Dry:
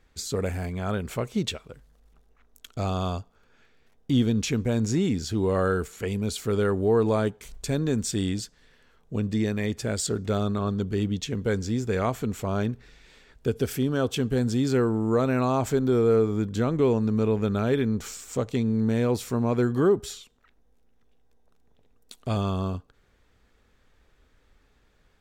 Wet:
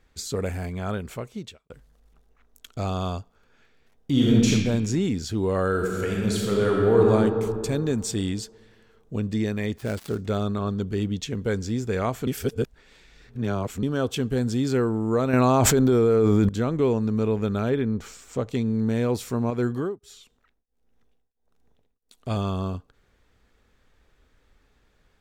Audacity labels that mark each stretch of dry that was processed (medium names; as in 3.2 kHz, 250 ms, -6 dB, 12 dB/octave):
0.850000	1.700000	fade out
4.110000	4.510000	reverb throw, RT60 1.3 s, DRR -4.5 dB
5.700000	7.110000	reverb throw, RT60 2.4 s, DRR -2 dB
9.740000	10.210000	dead-time distortion of 0.093 ms
12.270000	13.830000	reverse
15.330000	16.490000	level flattener amount 100%
17.690000	18.480000	treble shelf 3.4 kHz -> 6.1 kHz -10 dB
19.500000	22.310000	tremolo triangle 1.5 Hz, depth 100%